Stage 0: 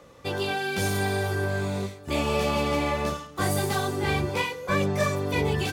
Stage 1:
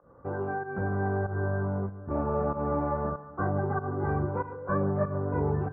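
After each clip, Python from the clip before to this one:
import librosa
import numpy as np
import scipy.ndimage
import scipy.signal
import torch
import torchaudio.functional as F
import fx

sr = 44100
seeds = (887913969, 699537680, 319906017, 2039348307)

y = fx.volume_shaper(x, sr, bpm=95, per_beat=1, depth_db=-15, release_ms=163.0, shape='fast start')
y = scipy.signal.sosfilt(scipy.signal.cheby1(5, 1.0, 1500.0, 'lowpass', fs=sr, output='sos'), y)
y = fx.echo_feedback(y, sr, ms=143, feedback_pct=59, wet_db=-18)
y = y * librosa.db_to_amplitude(-2.0)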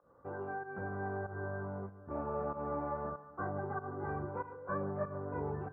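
y = fx.low_shelf(x, sr, hz=290.0, db=-7.5)
y = y * librosa.db_to_amplitude(-6.5)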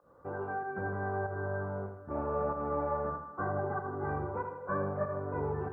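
y = fx.echo_feedback(x, sr, ms=80, feedback_pct=45, wet_db=-7.0)
y = y * librosa.db_to_amplitude(3.5)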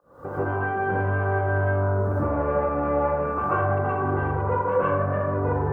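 y = fx.self_delay(x, sr, depth_ms=0.053)
y = fx.recorder_agc(y, sr, target_db=-26.5, rise_db_per_s=64.0, max_gain_db=30)
y = fx.rev_plate(y, sr, seeds[0], rt60_s=0.58, hf_ratio=0.75, predelay_ms=110, drr_db=-9.0)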